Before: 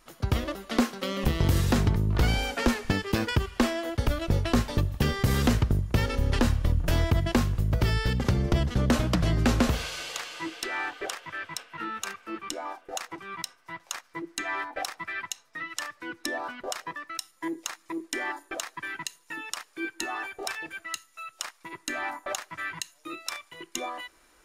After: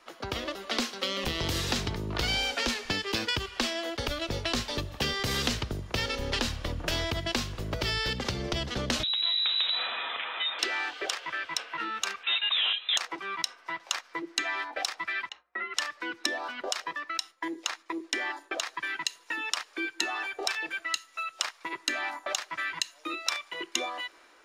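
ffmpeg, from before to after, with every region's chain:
-filter_complex "[0:a]asettb=1/sr,asplit=3[a][b][c];[a]atrim=end=9.034[d];[b]atrim=start=9.03:end=10.59,asetpts=PTS-STARTPTS,afade=t=in:d=0.004:c=qsin,afade=t=out:st=1.556:d=0.004:c=qsin,bandreject=f=1.2k:w=7.5,acompressor=threshold=-32dB:ratio=12:attack=3.2:release=140:knee=1:detection=peak,lowpass=f=3.4k:t=q:w=0.5098,lowpass=f=3.4k:t=q:w=0.6013,lowpass=f=3.4k:t=q:w=0.9,lowpass=f=3.4k:t=q:w=2.563,afreqshift=-4000[e];[c]atrim=start=10.586[f];[d][e]acrossfade=d=0.004:c1=hsin:c2=qsin[g];[g][f]acrossfade=d=0.004:c1=qsin:c2=hsin,asettb=1/sr,asplit=3[h][i][j];[h]atrim=end=12.234[k];[i]atrim=start=12.23:end=12.97,asetpts=PTS-STARTPTS,afade=t=in:d=0.004:c=qsin,afade=t=out:st=0.736:d=0.004:c=qsin,aeval=exprs='0.0211*(abs(mod(val(0)/0.0211+3,4)-2)-1)':c=same,acontrast=52,lowpass=f=3.4k:t=q:w=0.5098,lowpass=f=3.4k:t=q:w=0.6013,lowpass=f=3.4k:t=q:w=0.9,lowpass=f=3.4k:t=q:w=2.563,afreqshift=-4000[l];[j]atrim=start=12.966[m];[k][l]acrossfade=d=0.004:c1=hsin:c2=qsin[n];[n][m]acrossfade=d=0.004:c1=qsin:c2=hsin,asettb=1/sr,asplit=3[o][p][q];[o]atrim=end=15.294[r];[p]atrim=start=15.29:end=15.74,asetpts=PTS-STARTPTS,afade=t=in:d=0.004:c=qsin,afade=t=out:st=0.446:d=0.004:c=qsin,lowpass=1.8k,afreqshift=58,agate=range=-33dB:threshold=-56dB:ratio=3:release=100:detection=peak[s];[q]atrim=start=15.736[t];[r][s]acrossfade=d=0.004:c1=hsin:c2=qsin[u];[u][t]acrossfade=d=0.004:c1=qsin:c2=hsin,asettb=1/sr,asplit=3[v][w][x];[v]atrim=end=17.004[y];[w]atrim=start=17:end=18.65,asetpts=PTS-STARTPTS,afade=t=in:d=0.004:c=qsin,afade=t=out:st=1.646:d=0.004:c=qsin,agate=range=-33dB:threshold=-57dB:ratio=3:release=100:detection=peak,highshelf=f=6.4k:g=-5.5[z];[x]atrim=start=18.646[aa];[y][z]acrossfade=d=0.004:c1=hsin:c2=qsin[ab];[ab][aa]acrossfade=d=0.004:c1=qsin:c2=hsin,dynaudnorm=f=140:g=7:m=5dB,acrossover=split=280 5600:gain=0.0891 1 0.178[ac][ad][ae];[ac][ad][ae]amix=inputs=3:normalize=0,acrossover=split=150|3000[af][ag][ah];[ag]acompressor=threshold=-38dB:ratio=6[ai];[af][ai][ah]amix=inputs=3:normalize=0,volume=4.5dB"

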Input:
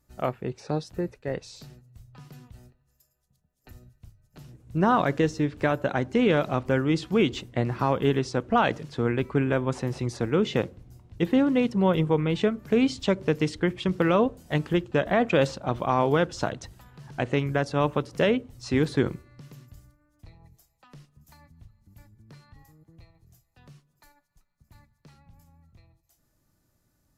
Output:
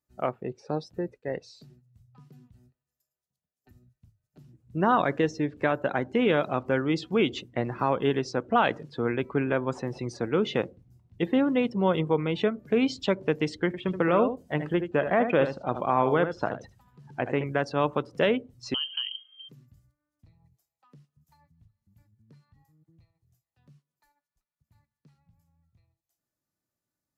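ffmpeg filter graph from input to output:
-filter_complex "[0:a]asettb=1/sr,asplit=3[a][b][c];[a]atrim=end=13.664[d];[b]atrim=start=13.66:end=17.44,asetpts=PTS-STARTPTS,afade=t=in:d=0.004:c=qsin,afade=t=out:st=3.776:d=0.004:c=qsin,acrossover=split=2600[e][f];[f]acompressor=threshold=-46dB:ratio=4:attack=1:release=60[g];[e][g]amix=inputs=2:normalize=0,aecho=1:1:77:0.355,atrim=end_sample=166698[h];[c]atrim=start=17.436[i];[d][h]acrossfade=d=0.004:c1=hsin:c2=qsin[j];[j][i]acrossfade=d=0.004:c1=qsin:c2=hsin,asettb=1/sr,asplit=3[k][l][m];[k]atrim=end=18.744[n];[l]atrim=start=18.74:end=19.49,asetpts=PTS-STARTPTS,afade=t=in:d=0.004:c=qsin,afade=t=out:st=0.746:d=0.004:c=qsin,equalizer=f=1.5k:t=o:w=0.78:g=-4.5,acompressor=threshold=-29dB:ratio=3:attack=3.2:release=140:knee=1:detection=peak,lowpass=f=2.8k:t=q:w=0.5098,lowpass=f=2.8k:t=q:w=0.6013,lowpass=f=2.8k:t=q:w=0.9,lowpass=f=2.8k:t=q:w=2.563,afreqshift=-3300[o];[m]atrim=start=19.486[p];[n][o]acrossfade=d=0.004:c1=hsin:c2=qsin[q];[q][p]acrossfade=d=0.004:c1=qsin:c2=hsin,afftdn=nr=15:nf=-43,highpass=f=230:p=1"

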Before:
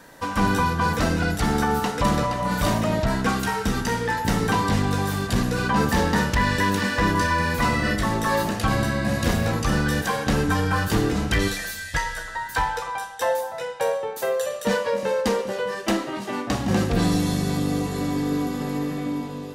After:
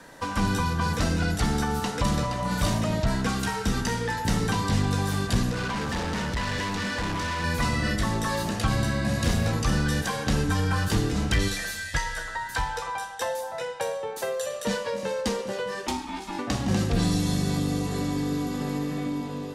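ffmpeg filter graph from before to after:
-filter_complex "[0:a]asettb=1/sr,asplit=3[a][b][c];[a]atrim=end=5.514[d];[b]atrim=start=5.51:end=7.44,asetpts=PTS-STARTPTS,afade=t=in:d=0.004:c=qsin,afade=t=out:st=1.926:d=0.004:c=qsin,acrossover=split=7100[e][f];[f]acompressor=threshold=-51dB:ratio=4:attack=1:release=60[g];[e][g]amix=inputs=2:normalize=0,asoftclip=type=hard:threshold=-25dB[h];[c]atrim=start=7.436[i];[d][h]acrossfade=d=0.004:c1=hsin:c2=qsin[j];[j][i]acrossfade=d=0.004:c1=qsin:c2=hsin,asettb=1/sr,asplit=3[k][l][m];[k]atrim=end=15.874[n];[l]atrim=start=15.87:end=16.39,asetpts=PTS-STARTPTS,afade=t=in:d=0.004:c=qsin,afade=t=out:st=0.516:d=0.004:c=qsin,equalizer=f=880:w=1:g=-14.5,aecho=1:1:3.2:0.73,atrim=end_sample=22932,aeval=exprs='val(0)*sin(2*PI*580*n/s)':c=same[o];[m]atrim=start=16.386[p];[n][o]acrossfade=d=0.004:c1=hsin:c2=qsin[q];[q][p]acrossfade=d=0.004:c1=qsin:c2=hsin,lowpass=11k,acrossover=split=180|3000[r][s][t];[s]acompressor=threshold=-29dB:ratio=3[u];[r][u][t]amix=inputs=3:normalize=0"

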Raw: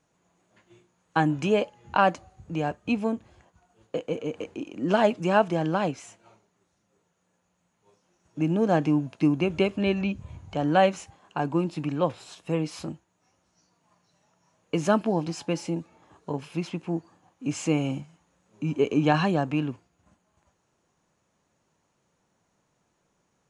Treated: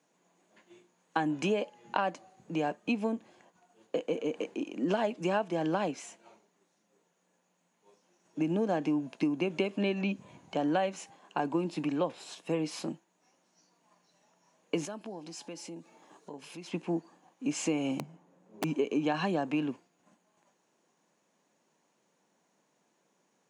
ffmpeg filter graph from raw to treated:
-filter_complex "[0:a]asettb=1/sr,asplit=3[a][b][c];[a]atrim=end=14.854[d];[b]atrim=start=14.85:end=16.72,asetpts=PTS-STARTPTS,afade=t=in:d=0.004:c=qsin,afade=t=out:st=1.866:d=0.004:c=qsin,bass=f=250:g=-2,treble=f=4k:g=5,acompressor=threshold=-45dB:ratio=2.5:attack=3.2:release=140:knee=1:detection=peak[e];[c]atrim=start=16.716[f];[d][e]acrossfade=d=0.004:c1=hsin:c2=qsin[g];[g][f]acrossfade=d=0.004:c1=qsin:c2=hsin,asettb=1/sr,asplit=3[h][i][j];[h]atrim=end=17.994[k];[i]atrim=start=17.99:end=18.64,asetpts=PTS-STARTPTS,afade=t=in:d=0.004:c=qsin,afade=t=out:st=0.646:d=0.004:c=qsin,tiltshelf=f=1.3k:g=9.5,acrossover=split=160|3000[l][m][n];[m]acompressor=threshold=-39dB:ratio=2:attack=3.2:release=140:knee=2.83:detection=peak[o];[l][o][n]amix=inputs=3:normalize=0,aeval=exprs='(mod(15.8*val(0)+1,2)-1)/15.8':c=same[p];[j]atrim=start=18.636[q];[k][p]acrossfade=d=0.004:c1=hsin:c2=qsin[r];[r][q]acrossfade=d=0.004:c1=qsin:c2=hsin,highpass=f=190:w=0.5412,highpass=f=190:w=1.3066,equalizer=f=1.3k:w=6.3:g=-5.5,acompressor=threshold=-26dB:ratio=6"

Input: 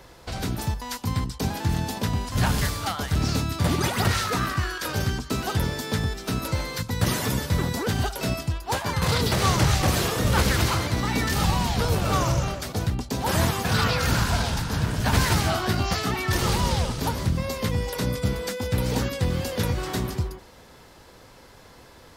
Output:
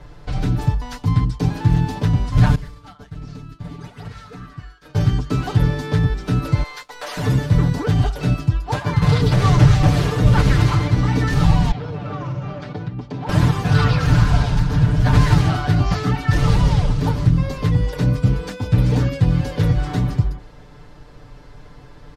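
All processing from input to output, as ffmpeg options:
-filter_complex "[0:a]asettb=1/sr,asplit=3[a][b][c];[a]atrim=end=2.554[d];[b]atrim=start=2.55:end=4.95,asetpts=PTS-STARTPTS,afade=t=in:d=0.004:c=qsin,afade=t=out:st=2.396:d=0.004:c=qsin,agate=range=-33dB:threshold=-19dB:ratio=3:release=100:detection=peak,aecho=1:1:4.5:0.34,atrim=end_sample=105840,acompressor=threshold=-39dB:ratio=4:attack=3.2:release=140:knee=1:detection=peak[e];[c]atrim=start=4.946[f];[d][e]acrossfade=d=0.004:c1=hsin:c2=qsin[g];[g][f]acrossfade=d=0.004:c1=qsin:c2=hsin,asettb=1/sr,asplit=3[h][i][j];[h]atrim=end=6.634[k];[i]atrim=start=6.63:end=7.17,asetpts=PTS-STARTPTS,afade=t=in:d=0.004:c=qsin,afade=t=out:st=0.536:d=0.004:c=qsin,highpass=f=550:w=0.5412,highpass=f=550:w=1.3066,aeval=exprs='sgn(val(0))*max(abs(val(0))-0.00398,0)':c=same,asplit=2[l][m];[m]adelay=15,volume=-13.5dB[n];[l][n]amix=inputs=2:normalize=0,atrim=end_sample=23814[o];[j]atrim=start=7.166[p];[k][o]acrossfade=d=0.004:c1=hsin:c2=qsin[q];[q][p]acrossfade=d=0.004:c1=qsin:c2=hsin,asettb=1/sr,asplit=3[r][s][t];[r]atrim=end=11.714[u];[s]atrim=start=11.71:end=13.29,asetpts=PTS-STARTPTS,afade=t=in:d=0.004:c=qsin,afade=t=out:st=1.576:d=0.004:c=qsin,acompressor=threshold=-28dB:ratio=5:attack=3.2:release=140:knee=1:detection=peak,highpass=140,lowpass=3.4k[v];[t]atrim=start=13.286[w];[u][v]acrossfade=d=0.004:c1=hsin:c2=qsin[x];[x][w]acrossfade=d=0.004:c1=qsin:c2=hsin,aemphasis=mode=reproduction:type=bsi,aecho=1:1:6.8:0.89,volume=-1dB"

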